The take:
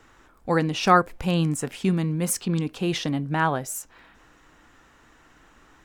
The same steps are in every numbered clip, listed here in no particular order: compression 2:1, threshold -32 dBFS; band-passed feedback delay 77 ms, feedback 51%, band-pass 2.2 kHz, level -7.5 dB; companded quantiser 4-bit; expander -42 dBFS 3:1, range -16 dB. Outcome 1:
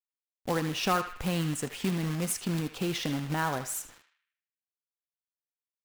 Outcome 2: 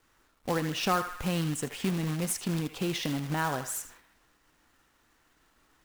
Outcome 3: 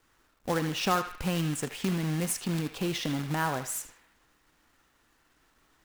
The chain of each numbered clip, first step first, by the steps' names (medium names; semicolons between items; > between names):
expander > companded quantiser > compression > band-passed feedback delay; band-passed feedback delay > companded quantiser > expander > compression; compression > companded quantiser > expander > band-passed feedback delay